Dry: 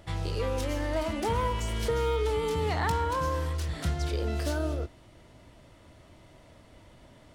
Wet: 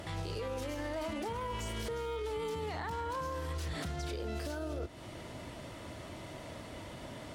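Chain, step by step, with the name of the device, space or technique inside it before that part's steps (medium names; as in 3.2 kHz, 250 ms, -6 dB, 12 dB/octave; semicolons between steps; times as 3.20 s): podcast mastering chain (high-pass 110 Hz 6 dB/octave; de-esser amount 90%; compression 4:1, threshold -43 dBFS, peak gain reduction 15 dB; peak limiter -40 dBFS, peak gain reduction 9.5 dB; trim +10.5 dB; MP3 96 kbps 44.1 kHz)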